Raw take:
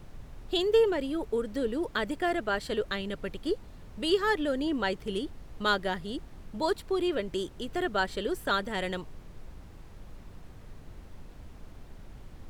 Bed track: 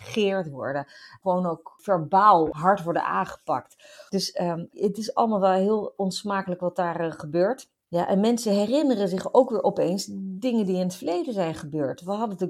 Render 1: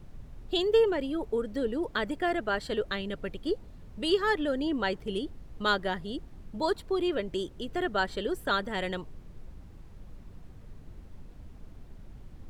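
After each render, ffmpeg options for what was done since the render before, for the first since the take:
-af "afftdn=nr=6:nf=-49"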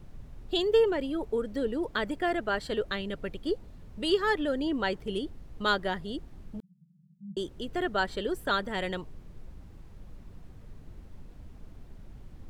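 -filter_complex "[0:a]asettb=1/sr,asplit=3[a][b][c];[a]atrim=end=6.604[d];[b]atrim=start=6.6:end=7.37,asetpts=PTS-STARTPTS,afade=t=in:d=0.004:c=qsin,afade=t=out:st=0.766:d=0.004:c=qsin,asuperpass=centerf=170:order=20:qfactor=2.6[e];[c]atrim=start=7.366[f];[d][e]acrossfade=d=0.004:c1=hsin:c2=qsin[g];[g][f]acrossfade=d=0.004:c1=qsin:c2=hsin"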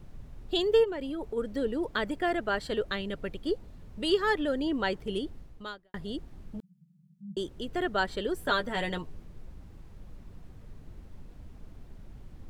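-filter_complex "[0:a]asplit=3[a][b][c];[a]afade=t=out:st=0.83:d=0.02[d];[b]acompressor=threshold=-31dB:ratio=6:attack=3.2:release=140:knee=1:detection=peak,afade=t=in:st=0.83:d=0.02,afade=t=out:st=1.36:d=0.02[e];[c]afade=t=in:st=1.36:d=0.02[f];[d][e][f]amix=inputs=3:normalize=0,asettb=1/sr,asplit=3[g][h][i];[g]atrim=end=8.364[j];[h]atrim=start=8.36:end=9.25,asetpts=PTS-STARTPTS,afade=t=in:d=0.004:c=qsin,afade=t=out:st=0.886:d=0.004:c=qsin,asplit=2[k][l];[l]adelay=12,volume=-5dB[m];[k][m]amix=inputs=2:normalize=0,atrim=end_sample=39249[n];[i]atrim=start=9.246[o];[j][n]acrossfade=d=0.004:c1=hsin:c2=qsin[p];[p][o]acrossfade=d=0.004:c1=qsin:c2=hsin,asplit=2[q][r];[q]atrim=end=5.94,asetpts=PTS-STARTPTS,afade=t=out:st=5.39:d=0.55:c=qua[s];[r]atrim=start=5.94,asetpts=PTS-STARTPTS,afade=t=in:d=0.004:c=hsin[t];[s][t]concat=n=2:v=0:a=1"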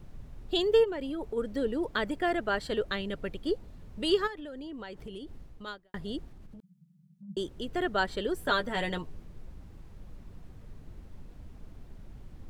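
-filter_complex "[0:a]asplit=3[a][b][c];[a]afade=t=out:st=4.26:d=0.02[d];[b]acompressor=threshold=-38dB:ratio=10:attack=3.2:release=140:knee=1:detection=peak,afade=t=in:st=4.26:d=0.02,afade=t=out:st=5.66:d=0.02[e];[c]afade=t=in:st=5.66:d=0.02[f];[d][e][f]amix=inputs=3:normalize=0,asplit=3[g][h][i];[g]afade=t=out:st=6.29:d=0.02[j];[h]acompressor=threshold=-44dB:ratio=10:attack=3.2:release=140:knee=1:detection=peak,afade=t=in:st=6.29:d=0.02,afade=t=out:st=7.28:d=0.02[k];[i]afade=t=in:st=7.28:d=0.02[l];[j][k][l]amix=inputs=3:normalize=0"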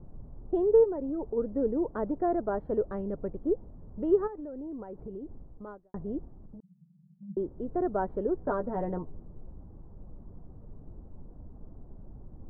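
-af "lowpass=f=1k:w=0.5412,lowpass=f=1k:w=1.3066,equalizer=f=330:t=o:w=2:g=2.5"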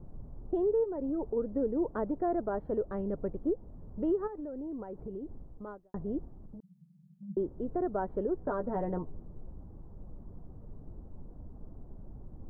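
-af "alimiter=limit=-22.5dB:level=0:latency=1:release=221"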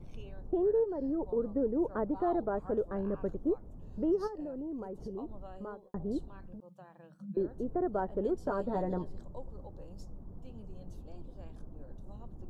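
-filter_complex "[1:a]volume=-29.5dB[a];[0:a][a]amix=inputs=2:normalize=0"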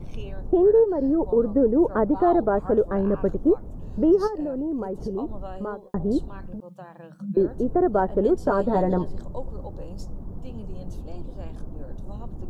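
-af "volume=11.5dB"

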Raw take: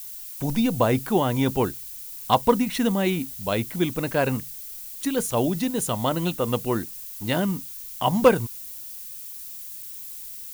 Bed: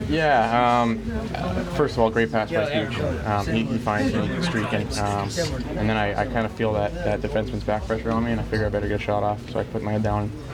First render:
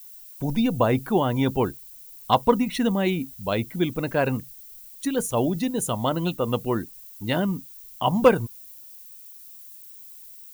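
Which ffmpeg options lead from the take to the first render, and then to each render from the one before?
-af "afftdn=nr=10:nf=-38"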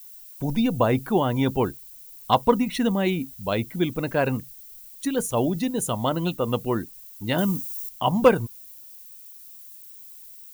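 -filter_complex "[0:a]asettb=1/sr,asplit=3[a][b][c];[a]atrim=end=7.384[d];[b]atrim=start=7.38:end=7.89,asetpts=PTS-STARTPTS,afade=t=in:d=0.004:c=qsin,afade=t=out:st=0.506:d=0.004:c=qsin,bass=f=250:g=2,treble=f=4k:g=11[e];[c]atrim=start=7.886[f];[d][e]acrossfade=d=0.004:c1=hsin:c2=qsin[g];[g][f]acrossfade=d=0.004:c1=qsin:c2=hsin"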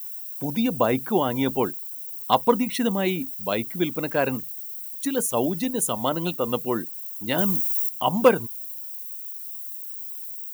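-af "highpass=180,highshelf=f=10k:g=10"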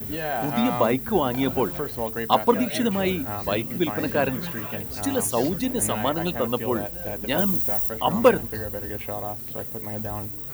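-filter_complex "[1:a]volume=-9.5dB[a];[0:a][a]amix=inputs=2:normalize=0"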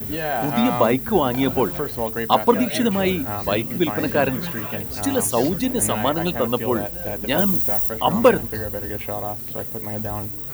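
-af "volume=3.5dB,alimiter=limit=-2dB:level=0:latency=1"

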